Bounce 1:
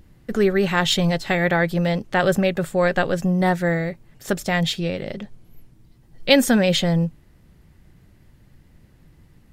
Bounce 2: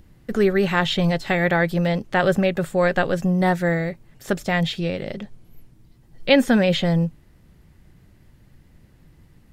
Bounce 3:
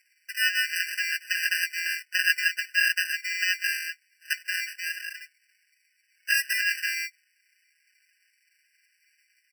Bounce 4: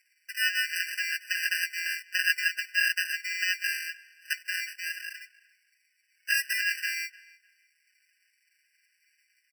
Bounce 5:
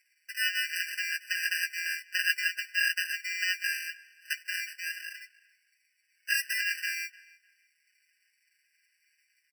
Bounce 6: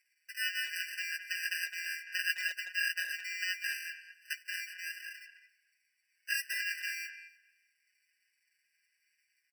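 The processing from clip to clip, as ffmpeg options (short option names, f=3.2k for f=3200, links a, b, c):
-filter_complex "[0:a]acrossover=split=3700[a][b];[b]acompressor=threshold=-38dB:ratio=4:attack=1:release=60[c];[a][c]amix=inputs=2:normalize=0"
-af "acrusher=samples=40:mix=1:aa=0.000001,aecho=1:1:5.5:0.99,afftfilt=real='re*eq(mod(floor(b*sr/1024/1500),2),1)':imag='im*eq(mod(floor(b*sr/1024/1500),2),1)':win_size=1024:overlap=0.75"
-filter_complex "[0:a]asplit=2[a][b];[b]adelay=301,lowpass=f=4.2k:p=1,volume=-21dB,asplit=2[c][d];[d]adelay=301,lowpass=f=4.2k:p=1,volume=0.24[e];[a][c][e]amix=inputs=3:normalize=0,volume=-2.5dB"
-filter_complex "[0:a]asplit=2[a][b];[b]adelay=13,volume=-11dB[c];[a][c]amix=inputs=2:normalize=0,volume=-2dB"
-filter_complex "[0:a]asplit=2[a][b];[b]adelay=210,highpass=300,lowpass=3.4k,asoftclip=type=hard:threshold=-22dB,volume=-9dB[c];[a][c]amix=inputs=2:normalize=0,volume=-5.5dB"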